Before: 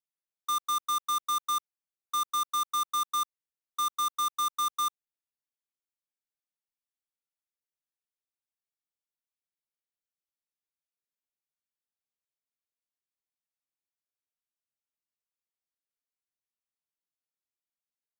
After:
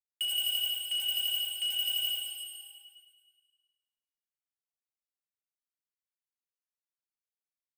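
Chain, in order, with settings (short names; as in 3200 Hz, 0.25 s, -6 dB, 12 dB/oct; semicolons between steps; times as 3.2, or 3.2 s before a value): HPF 280 Hz 12 dB/oct; gate with hold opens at -31 dBFS; steep low-pass 11000 Hz 96 dB/oct; in parallel at +1 dB: negative-ratio compressor -35 dBFS; on the sum: soft clip -27 dBFS, distortion -12 dB; frequency shift +50 Hz; on a send: multi-head echo 81 ms, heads second and third, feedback 63%, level -6.5 dB; on the sum: plate-style reverb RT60 4.2 s, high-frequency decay 0.85×, DRR 1 dB; speed mistake 33 rpm record played at 78 rpm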